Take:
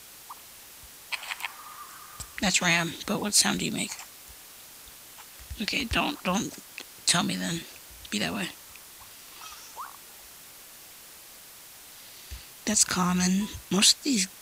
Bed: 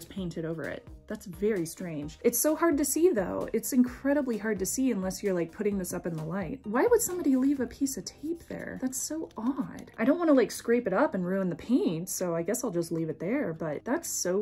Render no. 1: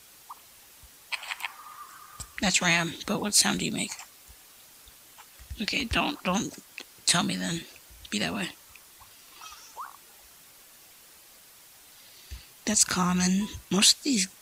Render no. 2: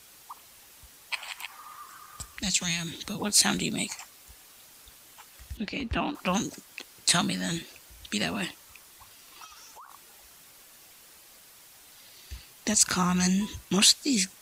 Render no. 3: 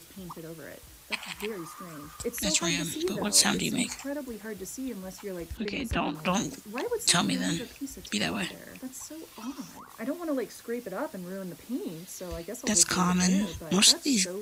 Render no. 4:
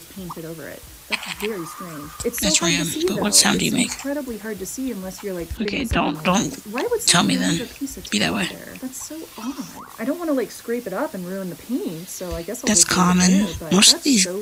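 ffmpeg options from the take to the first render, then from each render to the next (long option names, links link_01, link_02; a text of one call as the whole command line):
ffmpeg -i in.wav -af "afftdn=noise_reduction=6:noise_floor=-48" out.wav
ffmpeg -i in.wav -filter_complex "[0:a]asettb=1/sr,asplit=3[link_01][link_02][link_03];[link_01]atrim=end=1.244[link_04];[link_02]atrim=start=1.24:end=3.2,asetpts=PTS-STARTPTS,afade=type=in:duration=0.004:curve=qsin,afade=type=out:start_time=1.956:duration=0.004:curve=qsin,acrossover=split=190|3000[link_05][link_06][link_07];[link_06]acompressor=threshold=-39dB:ratio=6:attack=3.2:release=140:knee=2.83:detection=peak[link_08];[link_05][link_08][link_07]amix=inputs=3:normalize=0[link_09];[link_03]atrim=start=3.196[link_10];[link_04][link_09]acrossfade=duration=0.004:curve1=hsin:curve2=qsin[link_11];[link_11][link_10]acrossfade=duration=0.004:curve1=qsin:curve2=hsin,asettb=1/sr,asplit=3[link_12][link_13][link_14];[link_12]atrim=end=5.574[link_15];[link_13]atrim=start=5.57:end=6.15,asetpts=PTS-STARTPTS,afade=type=in:duration=0.004:curve=qsin,afade=type=out:start_time=0.576:duration=0.004:curve=qsin,lowpass=frequency=1200:poles=1[link_16];[link_14]atrim=start=6.146[link_17];[link_15][link_16]acrossfade=duration=0.004:curve1=hsin:curve2=qsin[link_18];[link_18][link_17]acrossfade=duration=0.004:curve1=qsin:curve2=hsin,asplit=3[link_19][link_20][link_21];[link_19]afade=type=out:start_time=9.44:duration=0.02[link_22];[link_20]acompressor=threshold=-44dB:ratio=12:attack=3.2:release=140:knee=1:detection=peak,afade=type=in:start_time=9.44:duration=0.02,afade=type=out:start_time=9.89:duration=0.02[link_23];[link_21]afade=type=in:start_time=9.89:duration=0.02[link_24];[link_22][link_23][link_24]amix=inputs=3:normalize=0" out.wav
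ffmpeg -i in.wav -i bed.wav -filter_complex "[1:a]volume=-8.5dB[link_01];[0:a][link_01]amix=inputs=2:normalize=0" out.wav
ffmpeg -i in.wav -af "volume=9dB,alimiter=limit=-2dB:level=0:latency=1" out.wav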